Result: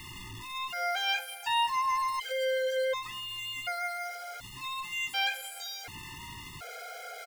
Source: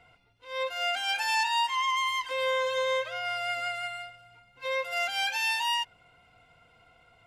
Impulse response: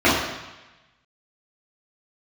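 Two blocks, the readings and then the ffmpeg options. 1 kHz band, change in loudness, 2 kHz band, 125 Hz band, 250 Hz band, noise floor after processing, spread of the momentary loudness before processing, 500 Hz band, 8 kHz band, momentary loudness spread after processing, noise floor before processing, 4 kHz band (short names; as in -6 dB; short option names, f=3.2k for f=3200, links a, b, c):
-2.0 dB, -3.5 dB, -4.0 dB, +9.5 dB, n/a, -45 dBFS, 10 LU, -1.5 dB, -1.5 dB, 14 LU, -62 dBFS, -3.0 dB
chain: -filter_complex "[0:a]aeval=exprs='val(0)+0.5*0.02*sgn(val(0))':c=same,asplit=2[a][b];[b]adelay=583.1,volume=-19dB,highshelf=f=4k:g=-13.1[c];[a][c]amix=inputs=2:normalize=0,afftfilt=real='re*gt(sin(2*PI*0.68*pts/sr)*(1-2*mod(floor(b*sr/1024/420),2)),0)':imag='im*gt(sin(2*PI*0.68*pts/sr)*(1-2*mod(floor(b*sr/1024/420),2)),0)':win_size=1024:overlap=0.75,volume=-1.5dB"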